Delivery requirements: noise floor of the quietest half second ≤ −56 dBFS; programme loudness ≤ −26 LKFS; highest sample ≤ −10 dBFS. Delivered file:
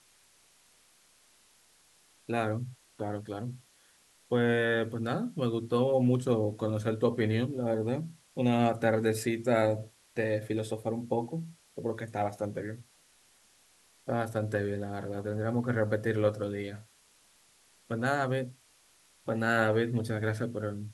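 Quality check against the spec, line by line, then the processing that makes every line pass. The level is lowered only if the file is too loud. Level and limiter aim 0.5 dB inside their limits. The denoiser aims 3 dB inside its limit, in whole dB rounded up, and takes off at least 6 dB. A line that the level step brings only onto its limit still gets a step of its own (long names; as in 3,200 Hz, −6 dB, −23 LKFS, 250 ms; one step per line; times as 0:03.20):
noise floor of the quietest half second −64 dBFS: in spec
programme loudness −31.0 LKFS: in spec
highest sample −12.5 dBFS: in spec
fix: no processing needed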